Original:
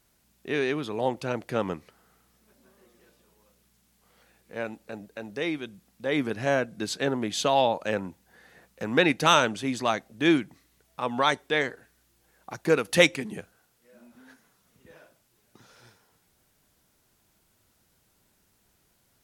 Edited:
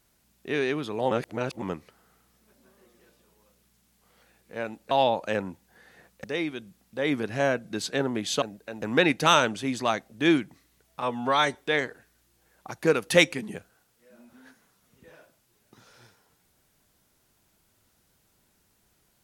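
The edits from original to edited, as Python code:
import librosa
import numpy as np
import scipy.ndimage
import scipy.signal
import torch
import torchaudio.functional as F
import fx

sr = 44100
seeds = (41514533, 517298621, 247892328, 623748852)

y = fx.edit(x, sr, fx.reverse_span(start_s=1.11, length_s=0.51),
    fx.swap(start_s=4.91, length_s=0.4, other_s=7.49, other_length_s=1.33),
    fx.stretch_span(start_s=11.02, length_s=0.35, factor=1.5), tone=tone)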